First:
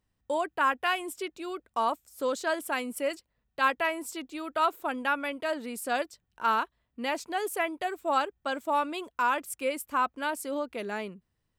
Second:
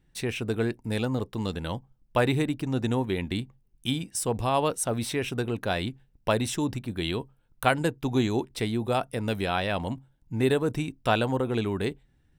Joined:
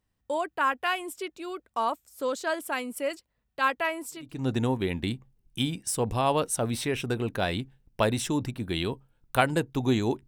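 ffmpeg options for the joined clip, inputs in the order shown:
ffmpeg -i cue0.wav -i cue1.wav -filter_complex "[0:a]apad=whole_dur=10.27,atrim=end=10.27,atrim=end=4.47,asetpts=PTS-STARTPTS[link_01];[1:a]atrim=start=2.37:end=8.55,asetpts=PTS-STARTPTS[link_02];[link_01][link_02]acrossfade=duration=0.38:curve1=qua:curve2=qua" out.wav

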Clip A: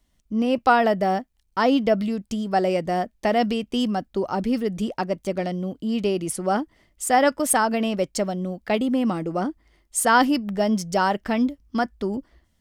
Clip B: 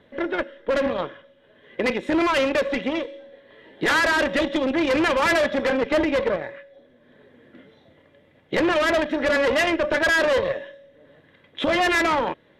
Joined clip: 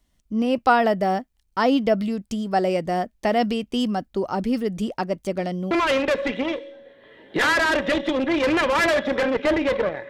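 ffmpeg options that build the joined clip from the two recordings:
ffmpeg -i cue0.wav -i cue1.wav -filter_complex "[0:a]apad=whole_dur=10.09,atrim=end=10.09,atrim=end=5.712[link_01];[1:a]atrim=start=2.178:end=6.56[link_02];[link_01][link_02]acrossfade=duration=0.004:curve1=hsin:curve2=hsin" out.wav

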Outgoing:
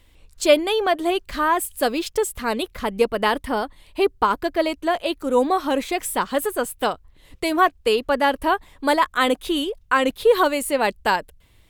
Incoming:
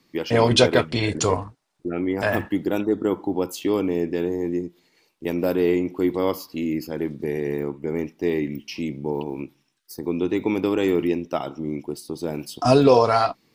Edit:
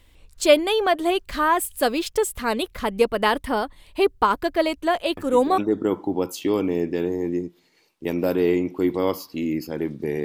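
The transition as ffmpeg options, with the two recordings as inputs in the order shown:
ffmpeg -i cue0.wav -i cue1.wav -filter_complex "[1:a]asplit=2[link_01][link_02];[0:a]apad=whole_dur=10.24,atrim=end=10.24,atrim=end=5.582[link_03];[link_02]atrim=start=2.778:end=7.44[link_04];[link_01]atrim=start=2.37:end=2.78,asetpts=PTS-STARTPTS,volume=-11.5dB,afade=type=in:duration=0.004:curve=hsin,afade=type=out:start_time=0.406:duration=0.004:curve=hsin,adelay=227997S[link_05];[link_03][link_04]acrossfade=duration=0.004:curve1=hsin:curve2=hsin[link_06];[link_06][link_05]amix=inputs=2:normalize=0" out.wav

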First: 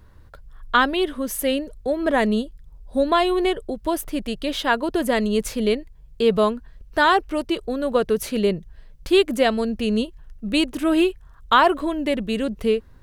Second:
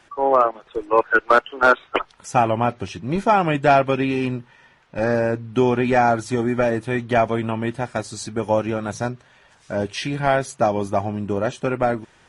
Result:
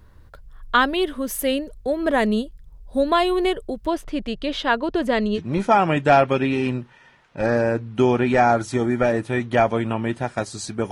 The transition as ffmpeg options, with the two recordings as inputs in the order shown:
ffmpeg -i cue0.wav -i cue1.wav -filter_complex "[0:a]asettb=1/sr,asplit=3[link_01][link_02][link_03];[link_01]atrim=end=3.864[link_04];[link_02]atrim=start=3.86:end=5.4,asetpts=PTS-STARTPTS,afade=type=in:duration=0.004:curve=qsin,afade=type=out:start_time=1.536:duration=0.004:curve=qsin,lowpass=5100[link_05];[link_03]atrim=start=5.396[link_06];[link_04][link_05]acrossfade=duration=0.004:curve1=hsin:curve2=qsin[link_07];[link_07][link_06]acrossfade=duration=0.004:curve1=qsin:curve2=hsin,apad=whole_dur=10.91,atrim=end=10.91,atrim=end=5.4,asetpts=PTS-STARTPTS[link_08];[1:a]atrim=start=2.92:end=8.49,asetpts=PTS-STARTPTS[link_09];[link_08][link_09]acrossfade=duration=0.06:curve1=tri:curve2=tri" out.wav

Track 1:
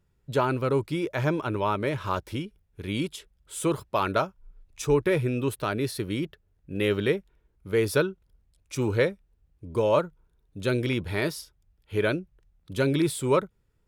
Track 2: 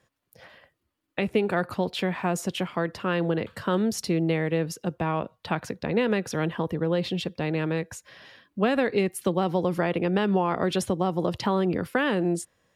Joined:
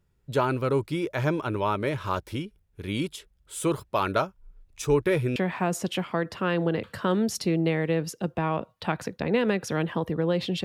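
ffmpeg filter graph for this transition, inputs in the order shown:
ffmpeg -i cue0.wav -i cue1.wav -filter_complex "[0:a]apad=whole_dur=10.64,atrim=end=10.64,atrim=end=5.362[link_01];[1:a]atrim=start=1.988:end=7.27[link_02];[link_01][link_02]acrossfade=duration=0.004:curve1=hsin:curve2=hsin" out.wav

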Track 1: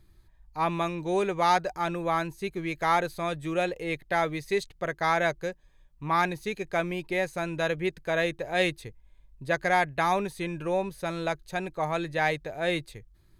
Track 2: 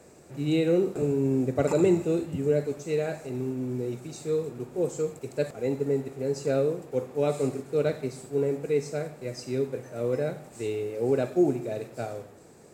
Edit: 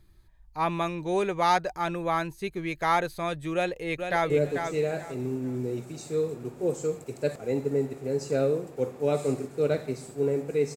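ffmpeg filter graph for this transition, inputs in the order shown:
ffmpeg -i cue0.wav -i cue1.wav -filter_complex "[0:a]apad=whole_dur=10.76,atrim=end=10.76,atrim=end=4.302[link_01];[1:a]atrim=start=2.448:end=8.91[link_02];[link_01][link_02]acrossfade=duration=0.004:curve1=hsin:curve2=hsin,asplit=2[link_03][link_04];[link_04]afade=type=in:start_time=3.54:duration=0.01,afade=type=out:start_time=4.3:duration=0.01,aecho=0:1:440|880|1320:0.473151|0.118288|0.029572[link_05];[link_03][link_05]amix=inputs=2:normalize=0" out.wav

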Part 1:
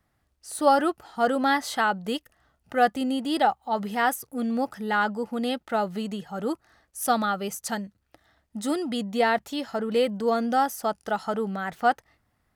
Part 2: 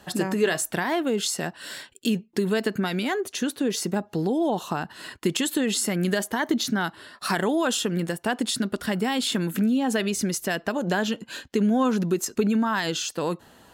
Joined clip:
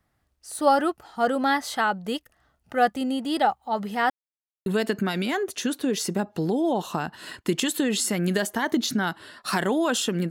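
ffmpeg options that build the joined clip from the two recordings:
ffmpeg -i cue0.wav -i cue1.wav -filter_complex "[0:a]apad=whole_dur=10.3,atrim=end=10.3,asplit=2[link_01][link_02];[link_01]atrim=end=4.1,asetpts=PTS-STARTPTS,afade=type=out:start_time=4.096:duration=0.004:curve=hsin[link_03];[link_02]atrim=start=4.1:end=4.66,asetpts=PTS-STARTPTS,volume=0[link_04];[1:a]atrim=start=2.43:end=8.07,asetpts=PTS-STARTPTS,afade=type=in:duration=0.004:curve=hsin[link_05];[link_03][link_04][link_05]concat=n=3:v=0:a=1" out.wav

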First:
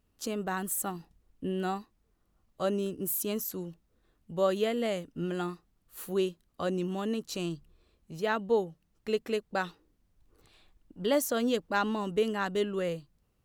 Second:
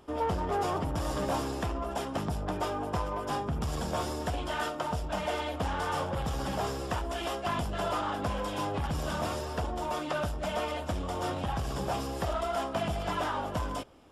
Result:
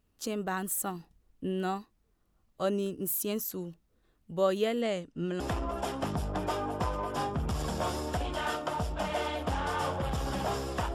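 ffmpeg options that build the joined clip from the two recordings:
ffmpeg -i cue0.wav -i cue1.wav -filter_complex "[0:a]asettb=1/sr,asplit=3[link_01][link_02][link_03];[link_01]atrim=end=4.814[link_04];[link_02]atrim=start=4.81:end=5.4,asetpts=PTS-STARTPTS,afade=type=in:duration=0.004:curve=qsin,afade=type=out:start_time=0.586:duration=0.004:curve=qsin,lowpass=frequency=9100:width=0.5412,lowpass=frequency=9100:width=1.3066[link_05];[link_03]atrim=start=5.396[link_06];[link_04][link_05]acrossfade=duration=0.004:curve1=hsin:curve2=qsin[link_07];[link_07][link_06]acrossfade=duration=0.004:curve1=qsin:curve2=hsin,apad=whole_dur=10.94,atrim=end=10.94,atrim=end=5.402[link_08];[1:a]atrim=start=1.528:end=7.07[link_09];[link_08][link_09]acrossfade=duration=0.004:curve1=hsin:curve2=hsin" out.wav

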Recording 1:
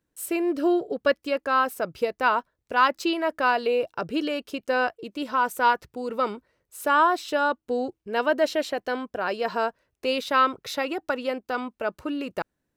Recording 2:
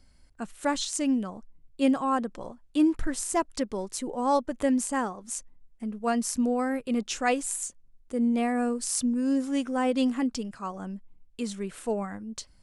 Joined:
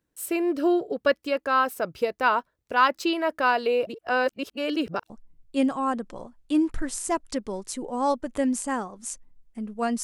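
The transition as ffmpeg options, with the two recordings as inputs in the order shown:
ffmpeg -i cue0.wav -i cue1.wav -filter_complex "[0:a]apad=whole_dur=10.03,atrim=end=10.03,asplit=2[link_01][link_02];[link_01]atrim=end=3.872[link_03];[link_02]atrim=start=3.868:end=5.102,asetpts=PTS-STARTPTS,areverse[link_04];[1:a]atrim=start=1.348:end=6.28[link_05];[link_03][link_04]acrossfade=duration=0.004:curve1=hsin:curve2=hsin[link_06];[link_06][link_05]acrossfade=duration=0.004:curve1=hsin:curve2=hsin" out.wav

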